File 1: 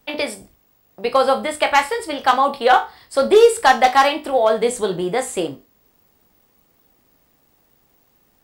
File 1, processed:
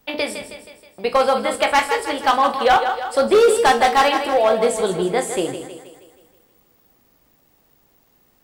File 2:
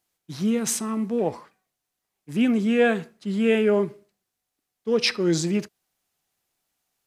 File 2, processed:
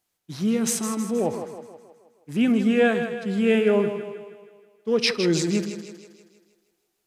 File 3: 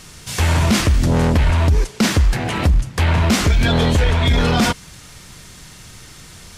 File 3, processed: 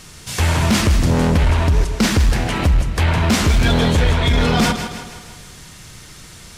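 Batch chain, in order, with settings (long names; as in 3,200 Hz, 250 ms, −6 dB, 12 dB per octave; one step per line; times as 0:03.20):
echo with a time of its own for lows and highs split 320 Hz, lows 115 ms, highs 159 ms, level −9 dB
gain into a clipping stage and back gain 9 dB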